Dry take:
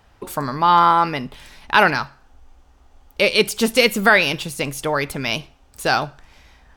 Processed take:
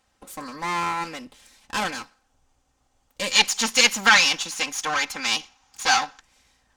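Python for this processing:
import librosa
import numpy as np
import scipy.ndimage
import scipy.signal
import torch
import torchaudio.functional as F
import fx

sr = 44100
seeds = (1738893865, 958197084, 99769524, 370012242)

y = fx.lower_of_two(x, sr, delay_ms=3.8)
y = fx.low_shelf(y, sr, hz=62.0, db=-9.5)
y = fx.spec_box(y, sr, start_s=3.32, length_s=2.88, low_hz=720.0, high_hz=7200.0, gain_db=11)
y = fx.peak_eq(y, sr, hz=7600.0, db=10.5, octaves=1.3)
y = F.gain(torch.from_numpy(y), -11.5).numpy()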